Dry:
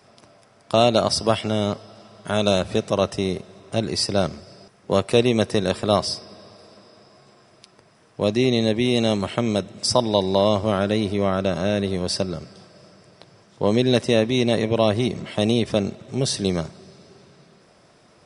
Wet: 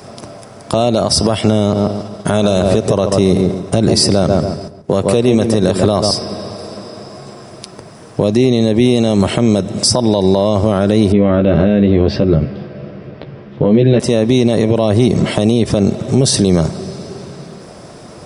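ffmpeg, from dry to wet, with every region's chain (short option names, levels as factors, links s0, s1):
-filter_complex "[0:a]asettb=1/sr,asplit=3[s0][s1][s2];[s0]atrim=end=1.594[s3];[s1]atrim=start=1.59:end=6.11,asetpts=PTS-STARTPTS,afade=t=in:d=0.004:c=qsin,afade=t=out:st=4.516:d=0.004:c=qsin,agate=range=0.0224:threshold=0.00708:ratio=3:release=100:detection=peak,asplit=2[s4][s5];[s5]adelay=138,lowpass=f=1800:p=1,volume=0.376,asplit=2[s6][s7];[s7]adelay=138,lowpass=f=1800:p=1,volume=0.3,asplit=2[s8][s9];[s9]adelay=138,lowpass=f=1800:p=1,volume=0.3,asplit=2[s10][s11];[s11]adelay=138,lowpass=f=1800:p=1,volume=0.3[s12];[s4][s6][s8][s10][s12]amix=inputs=5:normalize=0,atrim=end_sample=199332[s13];[s2]atrim=start=6.106[s14];[s3][s13]acrossfade=d=0.004:c1=hsin:c2=qsin[s15];[s15][s14]acrossfade=d=0.004:c1=qsin:c2=hsin,asettb=1/sr,asplit=3[s16][s17][s18];[s16]atrim=end=11.124[s19];[s17]atrim=start=11.12:end=14,asetpts=PTS-STARTPTS,afade=t=in:d=0.004:c=qsin,afade=t=out:st=2.876:d=0.004:c=qsin,lowpass=f=2900:w=0.5412,lowpass=f=2900:w=1.3066,equalizer=f=920:t=o:w=1.4:g=-7.5,asplit=2[s20][s21];[s21]adelay=14,volume=0.596[s22];[s20][s22]amix=inputs=2:normalize=0,atrim=end_sample=127008[s23];[s18]atrim=start=13.996[s24];[s19][s23]acrossfade=d=0.004:c1=hsin:c2=qsin[s25];[s25][s24]acrossfade=d=0.004:c1=qsin:c2=hsin,equalizer=f=2400:t=o:w=2.6:g=-8,acompressor=threshold=0.0562:ratio=6,alimiter=level_in=13.3:limit=0.891:release=50:level=0:latency=1,volume=0.891"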